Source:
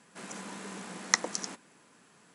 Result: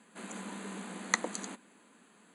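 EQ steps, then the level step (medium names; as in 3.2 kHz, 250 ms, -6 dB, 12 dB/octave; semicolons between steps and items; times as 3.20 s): Butterworth band-stop 5.4 kHz, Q 3.1; resonant low shelf 170 Hz -6 dB, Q 3; -1.5 dB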